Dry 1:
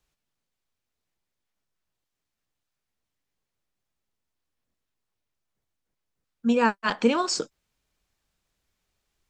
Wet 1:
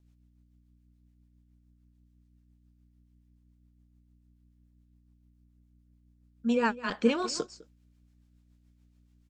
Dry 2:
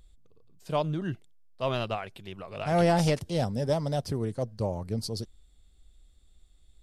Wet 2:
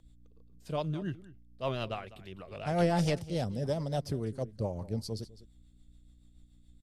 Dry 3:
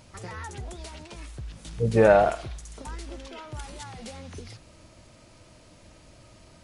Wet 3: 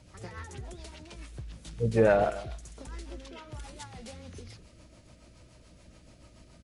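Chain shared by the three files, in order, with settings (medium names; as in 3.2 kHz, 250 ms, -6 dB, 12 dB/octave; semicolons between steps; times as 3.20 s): hum 60 Hz, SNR 26 dB; echo from a far wall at 35 m, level -17 dB; rotary cabinet horn 7 Hz; trim -2.5 dB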